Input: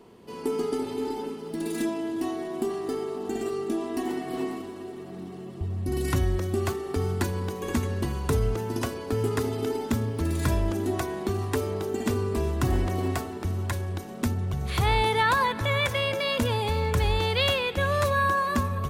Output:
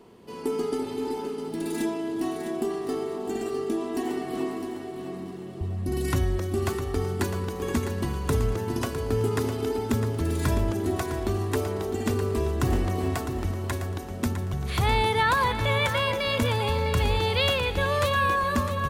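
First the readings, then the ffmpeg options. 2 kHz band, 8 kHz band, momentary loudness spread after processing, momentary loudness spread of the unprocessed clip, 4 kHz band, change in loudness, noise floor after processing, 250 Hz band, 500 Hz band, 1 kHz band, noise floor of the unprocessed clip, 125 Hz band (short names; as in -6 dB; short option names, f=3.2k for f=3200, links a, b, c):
+0.5 dB, +0.5 dB, 8 LU, 9 LU, +0.5 dB, +0.5 dB, -37 dBFS, +0.5 dB, +0.5 dB, +0.5 dB, -39 dBFS, +0.5 dB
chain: -af "aecho=1:1:656|1312|1968:0.355|0.0887|0.0222"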